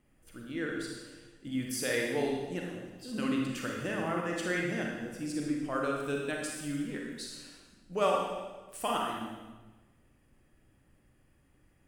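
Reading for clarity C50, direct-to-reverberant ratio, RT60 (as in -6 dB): 1.0 dB, -1.0 dB, 1.2 s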